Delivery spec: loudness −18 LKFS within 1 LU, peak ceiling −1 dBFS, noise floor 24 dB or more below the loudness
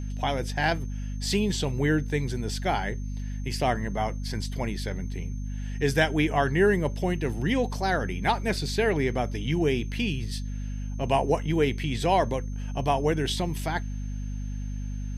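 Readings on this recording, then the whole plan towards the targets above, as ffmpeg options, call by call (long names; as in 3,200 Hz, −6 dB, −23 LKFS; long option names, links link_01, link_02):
mains hum 50 Hz; hum harmonics up to 250 Hz; level of the hum −30 dBFS; interfering tone 6,300 Hz; level of the tone −55 dBFS; integrated loudness −27.5 LKFS; sample peak −9.5 dBFS; target loudness −18.0 LKFS
→ -af "bandreject=frequency=50:width_type=h:width=4,bandreject=frequency=100:width_type=h:width=4,bandreject=frequency=150:width_type=h:width=4,bandreject=frequency=200:width_type=h:width=4,bandreject=frequency=250:width_type=h:width=4"
-af "bandreject=frequency=6300:width=30"
-af "volume=9.5dB,alimiter=limit=-1dB:level=0:latency=1"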